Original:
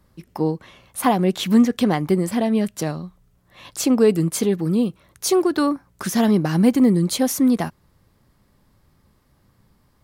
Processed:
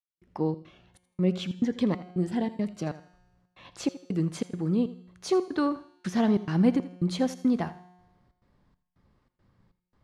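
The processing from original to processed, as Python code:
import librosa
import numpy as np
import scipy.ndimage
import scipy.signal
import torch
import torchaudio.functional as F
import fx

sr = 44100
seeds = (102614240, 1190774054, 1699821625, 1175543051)

y = fx.high_shelf(x, sr, hz=5500.0, db=-7.0)
y = fx.step_gate(y, sr, bpm=139, pattern='..xxx.xxx', floor_db=-60.0, edge_ms=4.5)
y = fx.air_absorb(y, sr, metres=78.0)
y = fx.comb_fb(y, sr, f0_hz=180.0, decay_s=1.2, harmonics='all', damping=0.0, mix_pct=60)
y = fx.echo_feedback(y, sr, ms=82, feedback_pct=27, wet_db=-16)
y = fx.notch_cascade(y, sr, direction='rising', hz=1.4, at=(0.53, 2.87))
y = y * librosa.db_to_amplitude(1.5)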